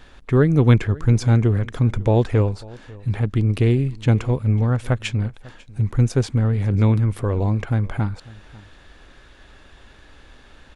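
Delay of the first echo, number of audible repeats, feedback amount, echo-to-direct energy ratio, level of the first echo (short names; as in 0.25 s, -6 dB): 0.546 s, 1, no steady repeat, -22.0 dB, -22.0 dB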